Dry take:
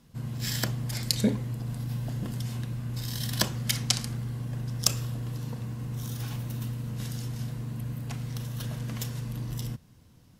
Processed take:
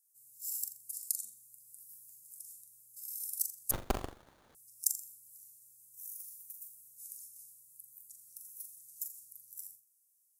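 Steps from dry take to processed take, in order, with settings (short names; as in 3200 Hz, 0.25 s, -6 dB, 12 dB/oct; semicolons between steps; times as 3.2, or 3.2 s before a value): inverse Chebyshev high-pass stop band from 2800 Hz, stop band 60 dB; flutter echo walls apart 7.2 m, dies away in 0.35 s; 3.71–4.55 running maximum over 17 samples; gain +2 dB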